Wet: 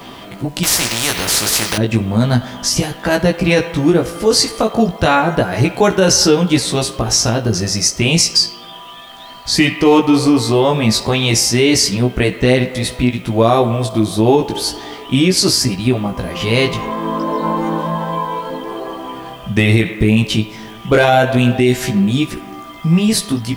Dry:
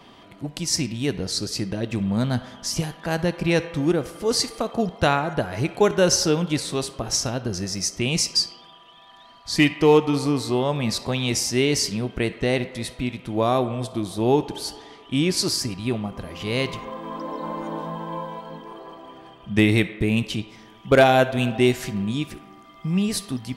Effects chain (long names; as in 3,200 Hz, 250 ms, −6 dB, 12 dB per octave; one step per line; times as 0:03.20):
in parallel at −1 dB: downward compressor, threshold −36 dBFS, peak gain reduction 23.5 dB
on the sum: chorus effect 0.32 Hz, delay 15.5 ms, depth 2.9 ms
bit reduction 10 bits
boost into a limiter +13 dB
0:00.63–0:01.78: every bin compressed towards the loudest bin 4 to 1
level −1 dB